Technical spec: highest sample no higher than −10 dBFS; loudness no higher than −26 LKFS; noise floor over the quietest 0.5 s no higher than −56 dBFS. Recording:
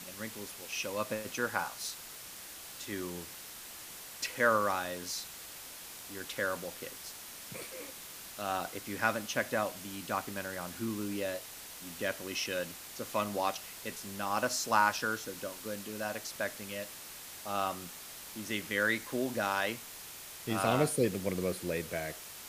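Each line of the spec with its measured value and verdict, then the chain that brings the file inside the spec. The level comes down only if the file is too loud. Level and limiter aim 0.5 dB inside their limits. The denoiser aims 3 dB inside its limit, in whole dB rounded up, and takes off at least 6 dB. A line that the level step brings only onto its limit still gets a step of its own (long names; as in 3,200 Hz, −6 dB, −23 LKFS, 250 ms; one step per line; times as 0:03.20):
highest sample −12.0 dBFS: in spec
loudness −35.5 LKFS: in spec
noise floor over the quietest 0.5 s −47 dBFS: out of spec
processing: broadband denoise 12 dB, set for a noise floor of −47 dBFS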